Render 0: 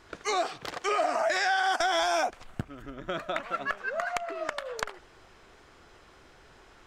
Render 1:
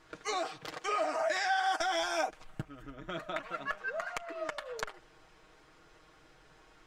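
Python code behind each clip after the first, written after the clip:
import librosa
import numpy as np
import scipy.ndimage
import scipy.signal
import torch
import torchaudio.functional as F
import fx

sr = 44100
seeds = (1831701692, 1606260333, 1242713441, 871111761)

y = x + 0.65 * np.pad(x, (int(6.4 * sr / 1000.0), 0))[:len(x)]
y = F.gain(torch.from_numpy(y), -6.5).numpy()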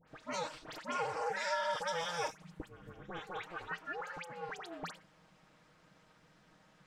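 y = x * np.sin(2.0 * np.pi * 170.0 * np.arange(len(x)) / sr)
y = fx.dispersion(y, sr, late='highs', ms=78.0, hz=2000.0)
y = F.gain(torch.from_numpy(y), -2.0).numpy()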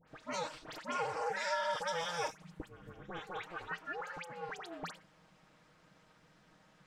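y = x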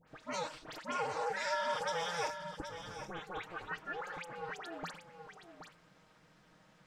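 y = x + 10.0 ** (-9.5 / 20.0) * np.pad(x, (int(773 * sr / 1000.0), 0))[:len(x)]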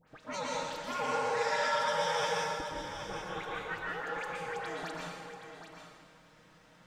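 y = fx.rev_plate(x, sr, seeds[0], rt60_s=1.3, hf_ratio=1.0, predelay_ms=105, drr_db=-3.5)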